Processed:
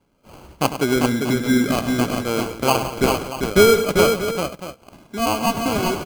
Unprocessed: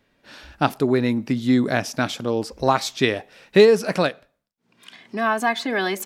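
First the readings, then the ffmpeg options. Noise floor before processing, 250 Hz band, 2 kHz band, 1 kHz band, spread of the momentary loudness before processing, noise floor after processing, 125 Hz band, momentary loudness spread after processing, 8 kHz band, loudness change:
−71 dBFS, +2.0 dB, 0.0 dB, +2.0 dB, 10 LU, −54 dBFS, +2.5 dB, 10 LU, +8.5 dB, +1.5 dB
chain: -af "acrusher=samples=24:mix=1:aa=0.000001,aecho=1:1:100|177|395|636:0.266|0.178|0.596|0.224"

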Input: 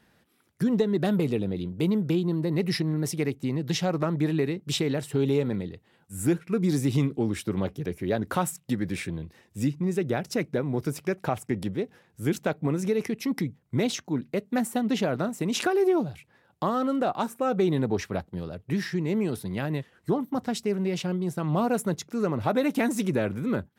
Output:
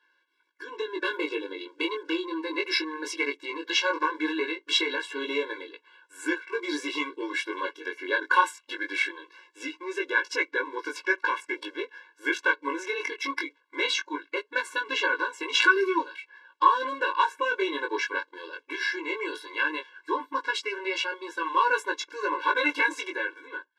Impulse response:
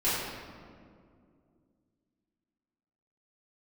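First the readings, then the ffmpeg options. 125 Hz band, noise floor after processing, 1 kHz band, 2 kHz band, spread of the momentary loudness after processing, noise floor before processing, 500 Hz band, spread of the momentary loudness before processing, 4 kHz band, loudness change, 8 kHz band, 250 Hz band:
below −40 dB, −70 dBFS, +6.0 dB, +12.0 dB, 12 LU, −65 dBFS, −4.5 dB, 7 LU, +6.5 dB, 0.0 dB, −3.5 dB, −10.0 dB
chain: -af "asubboost=boost=8.5:cutoff=83,flanger=delay=18:depth=3.6:speed=0.19,lowshelf=frequency=780:width_type=q:width=1.5:gain=-12.5,dynaudnorm=framelen=160:gausssize=11:maxgain=12dB,acrusher=bits=8:mode=log:mix=0:aa=0.000001,lowpass=3400,afftfilt=real='re*eq(mod(floor(b*sr/1024/290),2),1)':imag='im*eq(mod(floor(b*sr/1024/290),2),1)':win_size=1024:overlap=0.75,volume=4.5dB"

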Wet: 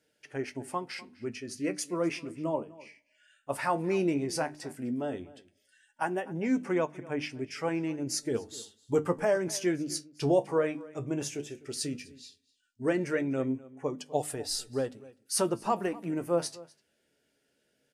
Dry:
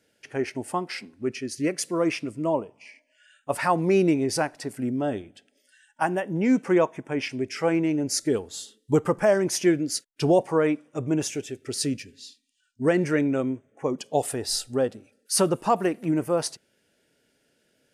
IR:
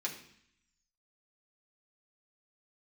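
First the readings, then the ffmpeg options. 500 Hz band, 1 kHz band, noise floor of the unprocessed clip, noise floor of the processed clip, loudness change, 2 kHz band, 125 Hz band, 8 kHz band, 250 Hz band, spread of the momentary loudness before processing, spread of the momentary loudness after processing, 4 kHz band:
−6.0 dB, −6.5 dB, −70 dBFS, −75 dBFS, −6.5 dB, −6.0 dB, −7.0 dB, −6.0 dB, −7.0 dB, 10 LU, 12 LU, −6.0 dB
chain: -filter_complex "[0:a]flanger=delay=6.6:depth=8:regen=54:speed=0.14:shape=sinusoidal,bandreject=frequency=50:width_type=h:width=6,bandreject=frequency=100:width_type=h:width=6,bandreject=frequency=150:width_type=h:width=6,bandreject=frequency=200:width_type=h:width=6,bandreject=frequency=250:width_type=h:width=6,bandreject=frequency=300:width_type=h:width=6,asplit=2[link_01][link_02];[link_02]adelay=250.7,volume=-20dB,highshelf=frequency=4000:gain=-5.64[link_03];[link_01][link_03]amix=inputs=2:normalize=0,volume=-2dB"

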